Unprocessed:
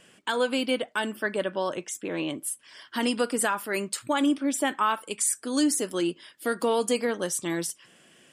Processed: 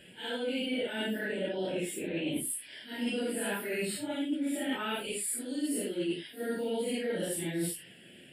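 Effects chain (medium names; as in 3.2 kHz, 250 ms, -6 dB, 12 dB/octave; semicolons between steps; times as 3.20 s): phase randomisation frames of 200 ms; static phaser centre 2.7 kHz, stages 4; reverse; compression 10:1, threshold -35 dBFS, peak gain reduction 15.5 dB; reverse; bass shelf 320 Hz +3 dB; trim +4 dB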